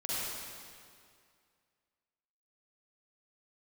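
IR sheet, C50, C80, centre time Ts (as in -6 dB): -7.0 dB, -4.0 dB, 180 ms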